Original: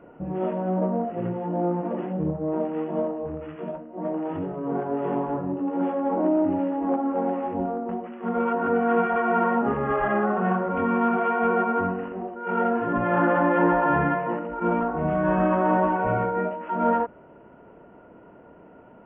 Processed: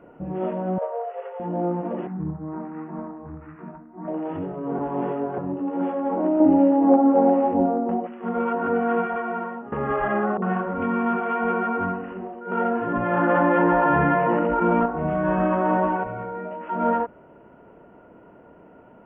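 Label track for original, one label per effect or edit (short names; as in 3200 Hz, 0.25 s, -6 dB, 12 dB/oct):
0.780000	1.400000	brick-wall FIR high-pass 400 Hz
2.070000	4.080000	fixed phaser centre 1300 Hz, stages 4
4.790000	5.380000	reverse
6.400000	8.070000	small resonant body resonances 280/540/760 Hz, height 9 dB, ringing for 25 ms
8.820000	9.720000	fade out, to -18.5 dB
10.370000	12.520000	bands offset in time lows, highs 50 ms, split 650 Hz
13.290000	14.860000	fast leveller amount 70%
16.030000	16.610000	compressor, threshold -28 dBFS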